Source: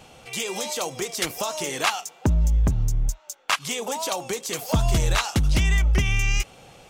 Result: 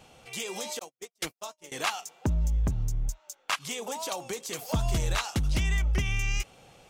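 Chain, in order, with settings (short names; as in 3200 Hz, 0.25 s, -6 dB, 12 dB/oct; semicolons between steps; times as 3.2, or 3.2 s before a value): 0.79–1.72 gate -25 dBFS, range -59 dB; gain -6.5 dB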